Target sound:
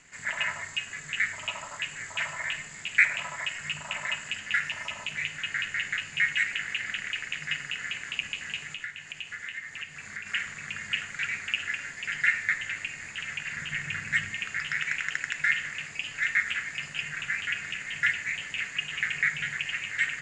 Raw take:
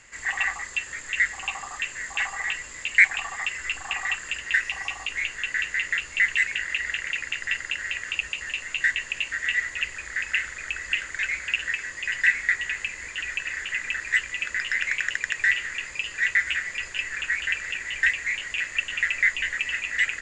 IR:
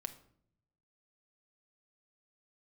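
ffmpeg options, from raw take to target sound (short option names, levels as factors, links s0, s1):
-filter_complex "[0:a]asettb=1/sr,asplit=3[s0][s1][s2];[s0]atrim=end=8.664[s3];[s1]atrim=start=8.66:end=10.26,asetpts=PTS-STARTPTS,afade=t=in:d=0.004:c=qsin,afade=t=out:st=1.596:d=0.004:c=qsin,acompressor=threshold=0.0282:ratio=6[s4];[s2]atrim=start=10.256[s5];[s3][s4]acrossfade=d=0.004:c1=hsin:c2=qsin[s6];[s6][s5]acrossfade=d=0.004:c1=qsin:c2=hsin,asettb=1/sr,asplit=3[s7][s8][s9];[s7]atrim=end=13.524[s10];[s8]atrim=start=13.52:end=14.32,asetpts=PTS-STARTPTS,afade=t=in:d=0.004:c=qsin,afade=t=out:st=0.796:d=0.004:c=qsin,lowshelf=f=160:g=10[s11];[s9]atrim=start=14.316[s12];[s10][s11]acrossfade=d=0.004:c1=hsin:c2=qsin[s13];[s13][s12]acrossfade=d=0.004:c1=qsin:c2=hsin,aeval=exprs='val(0)*sin(2*PI*150*n/s)':c=same[s14];[1:a]atrim=start_sample=2205,asetrate=34398,aresample=44100[s15];[s14][s15]afir=irnorm=-1:irlink=0"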